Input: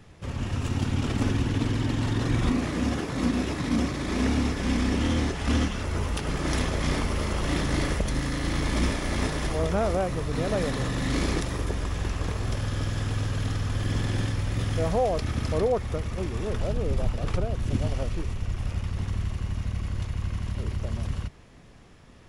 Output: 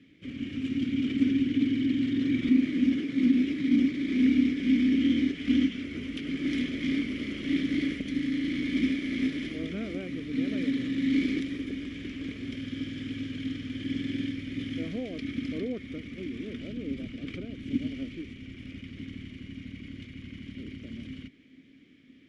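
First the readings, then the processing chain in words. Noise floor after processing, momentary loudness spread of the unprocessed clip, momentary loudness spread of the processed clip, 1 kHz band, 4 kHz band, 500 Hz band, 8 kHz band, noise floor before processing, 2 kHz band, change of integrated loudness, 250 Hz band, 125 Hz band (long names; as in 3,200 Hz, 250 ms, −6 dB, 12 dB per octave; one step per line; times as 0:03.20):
−53 dBFS, 6 LU, 17 LU, below −20 dB, −4.0 dB, −11.5 dB, below −15 dB, −49 dBFS, −4.0 dB, −1.0 dB, +3.5 dB, −14.5 dB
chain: formant filter i
level +8.5 dB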